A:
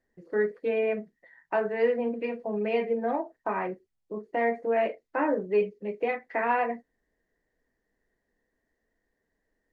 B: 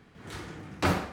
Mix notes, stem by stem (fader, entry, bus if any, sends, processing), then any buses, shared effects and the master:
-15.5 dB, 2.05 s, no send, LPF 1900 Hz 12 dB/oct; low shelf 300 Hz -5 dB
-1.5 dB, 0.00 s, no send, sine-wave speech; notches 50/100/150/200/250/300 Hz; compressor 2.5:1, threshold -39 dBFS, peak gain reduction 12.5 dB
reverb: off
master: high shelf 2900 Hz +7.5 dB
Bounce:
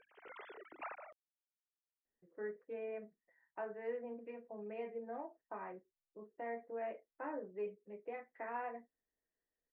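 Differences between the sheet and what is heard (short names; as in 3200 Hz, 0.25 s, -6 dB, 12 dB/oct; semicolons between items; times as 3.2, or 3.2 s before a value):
stem B -1.5 dB -> -10.5 dB; master: missing high shelf 2900 Hz +7.5 dB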